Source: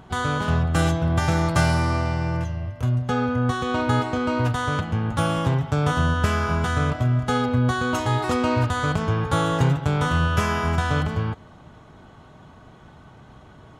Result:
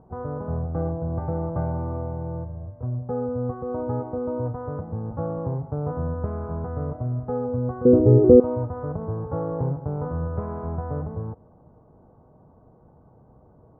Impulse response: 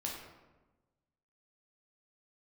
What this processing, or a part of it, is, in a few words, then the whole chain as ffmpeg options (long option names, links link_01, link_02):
under water: -filter_complex "[0:a]asettb=1/sr,asplit=3[link_01][link_02][link_03];[link_01]atrim=end=7.854[link_04];[link_02]atrim=start=7.85:end=8.4,asetpts=PTS-STARTPTS,afade=type=in:duration=0.004:curve=qsin,afade=type=out:start_time=0.546:duration=0.004:curve=qsin,lowshelf=frequency=610:width_type=q:width=3:gain=13.5[link_05];[link_03]atrim=start=8.396[link_06];[link_04][link_05]acrossfade=duration=0.004:curve1=hsin:curve2=qsin[link_07];[link_07][link_06]acrossfade=duration=0.004:curve1=qsin:curve2=hsin,lowpass=frequency=920:width=0.5412,lowpass=frequency=920:width=1.3066,equalizer=frequency=490:width_type=o:width=0.25:gain=8,volume=-6.5dB"